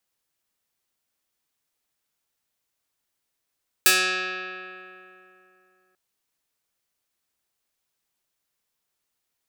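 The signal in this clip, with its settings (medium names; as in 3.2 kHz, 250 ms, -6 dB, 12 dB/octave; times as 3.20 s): plucked string F#3, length 2.09 s, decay 3.07 s, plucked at 0.18, medium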